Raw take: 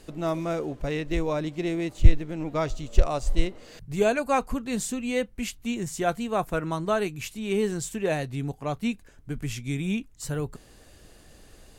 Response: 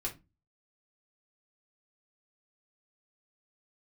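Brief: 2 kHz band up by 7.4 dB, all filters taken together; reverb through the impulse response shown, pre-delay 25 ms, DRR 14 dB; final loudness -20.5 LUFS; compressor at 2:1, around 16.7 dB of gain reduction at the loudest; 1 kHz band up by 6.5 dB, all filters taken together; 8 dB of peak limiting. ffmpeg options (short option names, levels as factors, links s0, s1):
-filter_complex "[0:a]equalizer=f=1000:t=o:g=7,equalizer=f=2000:t=o:g=7.5,acompressor=threshold=0.0126:ratio=2,alimiter=level_in=1.19:limit=0.0631:level=0:latency=1,volume=0.841,asplit=2[s0][s1];[1:a]atrim=start_sample=2205,adelay=25[s2];[s1][s2]afir=irnorm=-1:irlink=0,volume=0.168[s3];[s0][s3]amix=inputs=2:normalize=0,volume=6.68"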